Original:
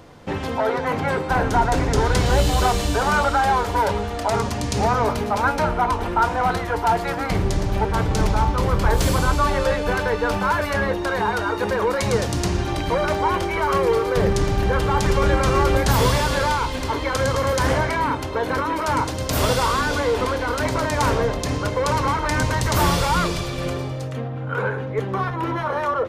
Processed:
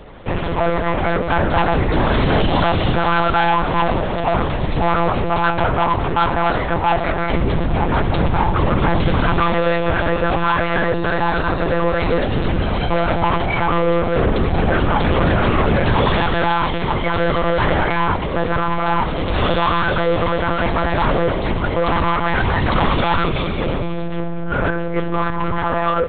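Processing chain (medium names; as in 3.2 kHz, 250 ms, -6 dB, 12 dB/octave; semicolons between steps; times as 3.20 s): saturation -18.5 dBFS, distortion -12 dB; on a send at -19 dB: reverberation RT60 5.3 s, pre-delay 110 ms; on the sum: monotone LPC vocoder at 8 kHz 170 Hz; trim +7 dB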